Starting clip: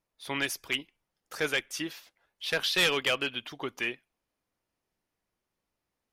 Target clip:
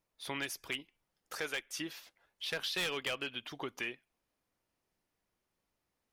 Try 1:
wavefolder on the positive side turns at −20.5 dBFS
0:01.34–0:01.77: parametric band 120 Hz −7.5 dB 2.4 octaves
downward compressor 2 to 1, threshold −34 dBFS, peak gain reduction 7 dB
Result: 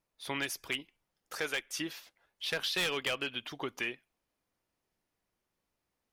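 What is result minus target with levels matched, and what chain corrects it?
downward compressor: peak gain reduction −3 dB
wavefolder on the positive side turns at −20.5 dBFS
0:01.34–0:01.77: parametric band 120 Hz −7.5 dB 2.4 octaves
downward compressor 2 to 1, threshold −40.5 dBFS, peak gain reduction 10 dB

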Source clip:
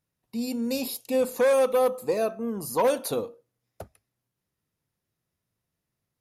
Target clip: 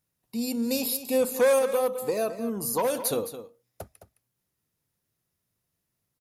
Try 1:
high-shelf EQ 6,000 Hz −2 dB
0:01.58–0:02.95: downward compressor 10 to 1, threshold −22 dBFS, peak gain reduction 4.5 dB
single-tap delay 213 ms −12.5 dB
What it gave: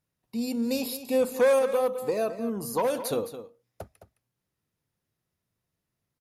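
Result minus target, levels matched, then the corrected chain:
8,000 Hz band −6.0 dB
high-shelf EQ 6,000 Hz +7.5 dB
0:01.58–0:02.95: downward compressor 10 to 1, threshold −22 dBFS, peak gain reduction 4.5 dB
single-tap delay 213 ms −12.5 dB

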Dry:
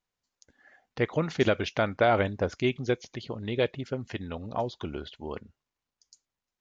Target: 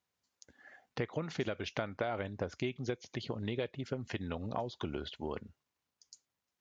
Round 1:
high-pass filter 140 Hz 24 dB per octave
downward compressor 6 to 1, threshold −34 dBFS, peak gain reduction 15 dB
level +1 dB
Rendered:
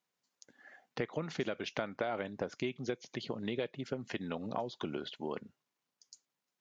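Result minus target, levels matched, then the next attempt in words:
125 Hz band −4.5 dB
high-pass filter 67 Hz 24 dB per octave
downward compressor 6 to 1, threshold −34 dBFS, peak gain reduction 15.5 dB
level +1 dB

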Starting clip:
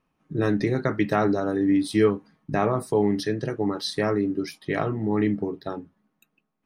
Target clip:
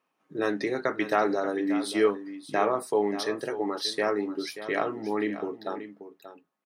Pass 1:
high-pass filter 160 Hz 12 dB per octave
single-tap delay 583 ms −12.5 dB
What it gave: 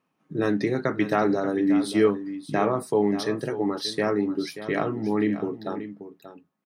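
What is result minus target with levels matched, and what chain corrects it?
125 Hz band +9.5 dB
high-pass filter 400 Hz 12 dB per octave
single-tap delay 583 ms −12.5 dB

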